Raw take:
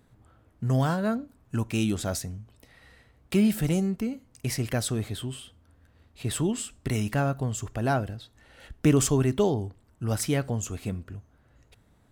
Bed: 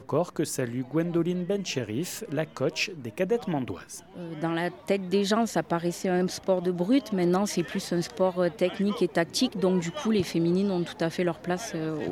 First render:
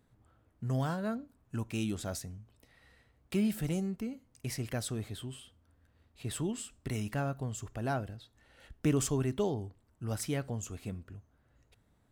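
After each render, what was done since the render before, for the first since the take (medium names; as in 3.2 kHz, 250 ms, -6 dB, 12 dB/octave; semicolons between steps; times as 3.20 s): trim -8 dB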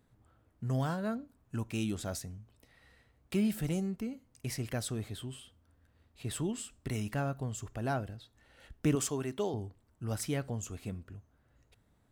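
8.95–9.54 s: high-pass 320 Hz 6 dB/octave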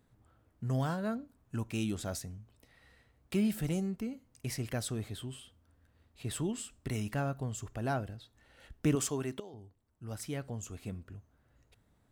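9.40–11.14 s: fade in, from -17 dB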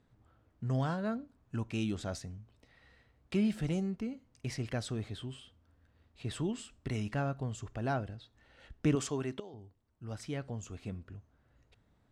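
low-pass 5.7 kHz 12 dB/octave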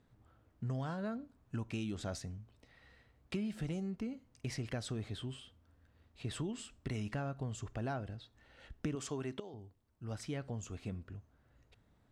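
compression 6:1, threshold -35 dBFS, peak gain reduction 11 dB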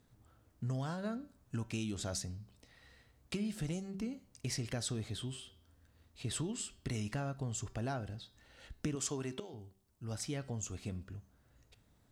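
tone controls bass +1 dB, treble +10 dB; de-hum 192.1 Hz, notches 29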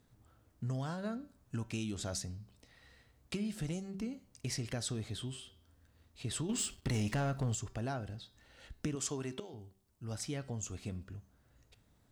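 6.49–7.55 s: waveshaping leveller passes 2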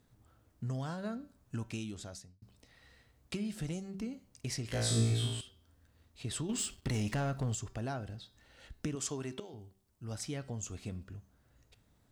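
1.65–2.42 s: fade out; 4.67–5.41 s: flutter echo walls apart 3 m, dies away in 0.88 s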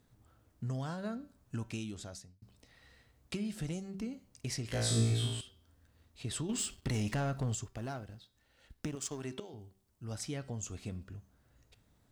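7.64–9.23 s: companding laws mixed up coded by A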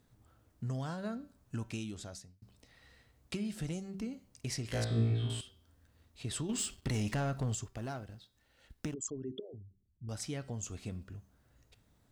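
4.84–5.30 s: distance through air 430 m; 8.94–10.09 s: resonances exaggerated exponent 3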